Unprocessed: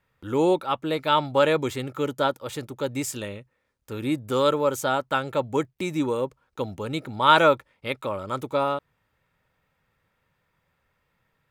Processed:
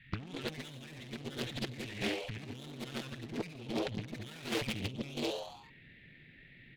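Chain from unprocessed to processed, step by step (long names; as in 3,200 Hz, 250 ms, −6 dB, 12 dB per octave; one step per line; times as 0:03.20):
drawn EQ curve 210 Hz 0 dB, 320 Hz −12 dB, 530 Hz −28 dB, 1,200 Hz −28 dB, 1,800 Hz +5 dB, 4,000 Hz +1 dB, 5,700 Hz −28 dB, 11,000 Hz −23 dB
gain on a spectral selection 0:07.58–0:09.57, 560–2,300 Hz −24 dB
comb filter 6.8 ms, depth 45%
hard clipping −23.5 dBFS, distortion −10 dB
tube saturation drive 38 dB, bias 0.65
echo with shifted repeats 111 ms, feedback 59%, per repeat +97 Hz, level −5 dB
on a send at −17 dB: convolution reverb RT60 0.35 s, pre-delay 67 ms
on the sum: compressor whose output falls as the input rises −47 dBFS, ratio −0.5
tempo change 1.7×
highs frequency-modulated by the lows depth 0.79 ms
level +9 dB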